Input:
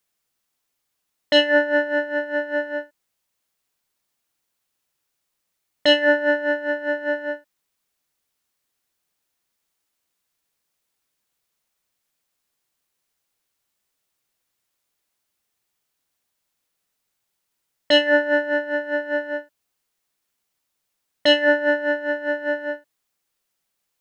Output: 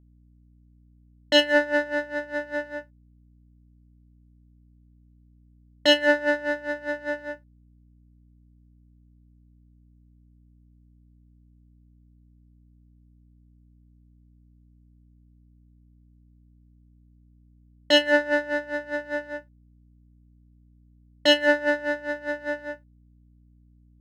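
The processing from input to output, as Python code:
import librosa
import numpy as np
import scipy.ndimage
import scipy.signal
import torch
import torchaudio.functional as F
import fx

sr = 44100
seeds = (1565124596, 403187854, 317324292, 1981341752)

y = fx.power_curve(x, sr, exponent=1.4)
y = fx.add_hum(y, sr, base_hz=60, snr_db=26)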